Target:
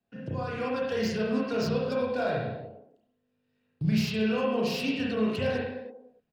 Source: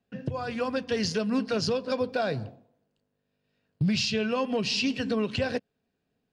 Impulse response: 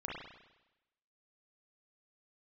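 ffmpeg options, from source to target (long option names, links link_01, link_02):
-filter_complex "[0:a]acrossover=split=250|810[link_01][link_02][link_03];[link_02]aecho=1:1:301:0.299[link_04];[link_03]asoftclip=type=hard:threshold=-28dB[link_05];[link_01][link_04][link_05]amix=inputs=3:normalize=0[link_06];[1:a]atrim=start_sample=2205,afade=type=out:start_time=0.39:duration=0.01,atrim=end_sample=17640[link_07];[link_06][link_07]afir=irnorm=-1:irlink=0,volume=-2dB"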